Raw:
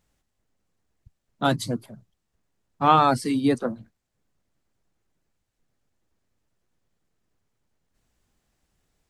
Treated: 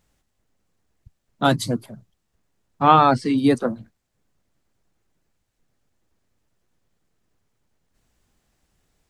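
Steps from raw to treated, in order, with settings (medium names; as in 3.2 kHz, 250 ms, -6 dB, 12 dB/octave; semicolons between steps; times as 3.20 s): 2.82–3.38 s: distance through air 100 m; trim +4 dB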